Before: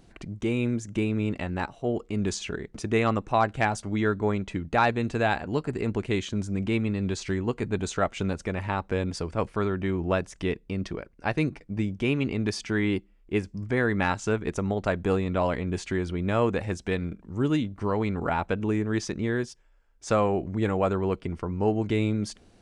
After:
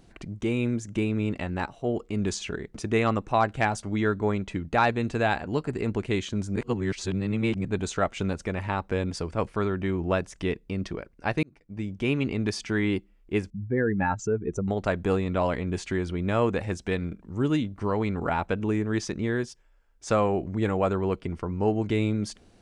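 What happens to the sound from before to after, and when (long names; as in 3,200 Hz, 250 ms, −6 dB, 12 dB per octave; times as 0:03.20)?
0:06.56–0:07.65: reverse
0:11.43–0:12.11: fade in
0:13.50–0:14.68: expanding power law on the bin magnitudes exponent 1.9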